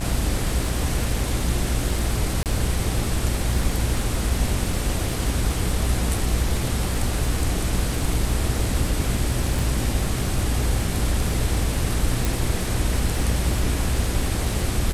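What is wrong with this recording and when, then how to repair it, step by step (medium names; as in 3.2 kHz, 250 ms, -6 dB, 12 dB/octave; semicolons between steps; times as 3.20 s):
buzz 60 Hz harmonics 38 -27 dBFS
crackle 49 per s -28 dBFS
2.43–2.46 s: dropout 28 ms
9.59 s: pop
12.25 s: pop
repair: de-click; de-hum 60 Hz, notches 38; interpolate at 2.43 s, 28 ms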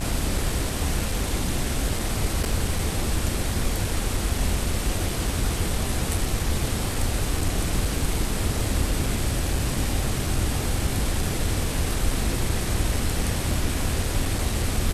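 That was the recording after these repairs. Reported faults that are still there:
nothing left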